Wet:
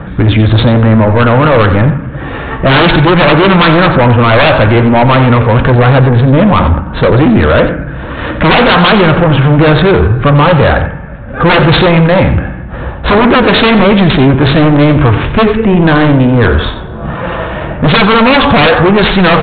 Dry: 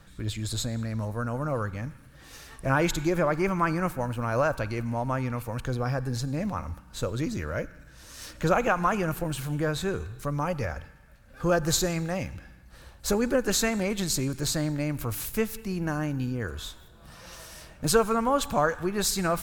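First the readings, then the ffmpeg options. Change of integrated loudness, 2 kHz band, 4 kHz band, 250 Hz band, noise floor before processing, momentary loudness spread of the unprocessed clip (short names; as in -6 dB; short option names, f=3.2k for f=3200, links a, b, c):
+21.0 dB, +22.5 dB, +21.5 dB, +22.0 dB, -51 dBFS, 14 LU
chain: -filter_complex "[0:a]highpass=f=87:p=1,adynamicsmooth=sensitivity=2.5:basefreq=1.4k,flanger=delay=4.1:depth=6.9:regen=-81:speed=1:shape=triangular,aresample=8000,aeval=exprs='0.2*sin(PI/2*5.62*val(0)/0.2)':c=same,aresample=44100,apsyclip=23.5dB,asplit=2[a][b];[b]aecho=0:1:90:0.266[c];[a][c]amix=inputs=2:normalize=0,volume=-3.5dB"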